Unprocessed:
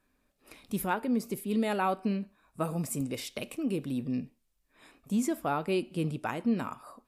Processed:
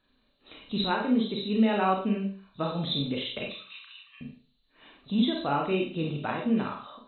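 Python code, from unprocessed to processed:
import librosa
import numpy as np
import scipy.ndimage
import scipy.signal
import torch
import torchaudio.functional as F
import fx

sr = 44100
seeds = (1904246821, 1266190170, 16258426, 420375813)

y = fx.freq_compress(x, sr, knee_hz=2700.0, ratio=4.0)
y = fx.ellip_highpass(y, sr, hz=1100.0, order=4, stop_db=50, at=(3.47, 4.21))
y = fx.rev_schroeder(y, sr, rt60_s=0.41, comb_ms=28, drr_db=0.0)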